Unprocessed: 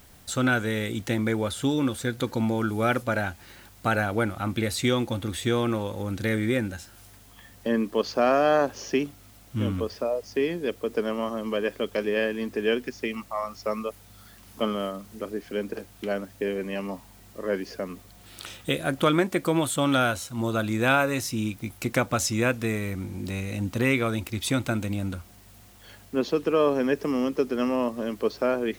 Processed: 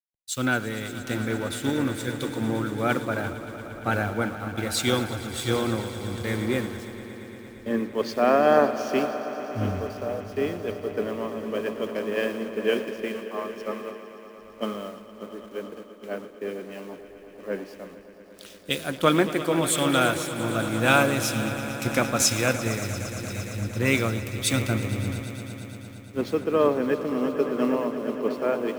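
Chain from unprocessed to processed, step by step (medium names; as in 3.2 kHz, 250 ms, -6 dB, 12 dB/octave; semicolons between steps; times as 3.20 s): send-on-delta sampling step -40 dBFS; echo with a slow build-up 115 ms, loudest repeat 5, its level -12 dB; three bands expanded up and down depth 100%; trim -2 dB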